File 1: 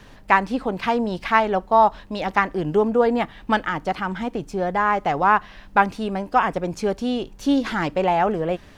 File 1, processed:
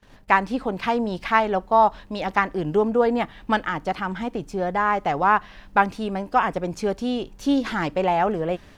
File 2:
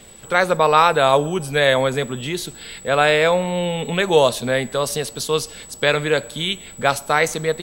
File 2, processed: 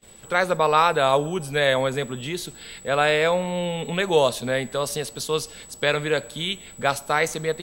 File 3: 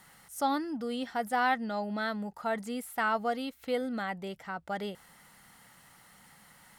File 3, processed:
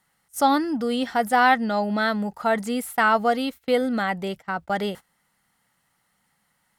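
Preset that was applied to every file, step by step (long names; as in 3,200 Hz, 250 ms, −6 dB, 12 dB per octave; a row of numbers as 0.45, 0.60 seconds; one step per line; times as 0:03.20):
noise gate −45 dBFS, range −22 dB
loudness normalisation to −23 LKFS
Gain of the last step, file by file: −1.5, −4.0, +10.0 decibels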